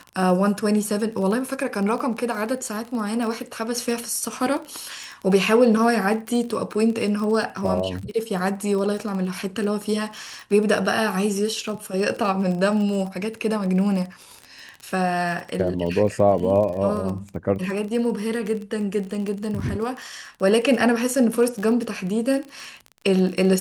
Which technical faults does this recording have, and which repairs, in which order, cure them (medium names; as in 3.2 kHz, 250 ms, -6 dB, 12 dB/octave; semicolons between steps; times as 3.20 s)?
crackle 25 per s -28 dBFS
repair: de-click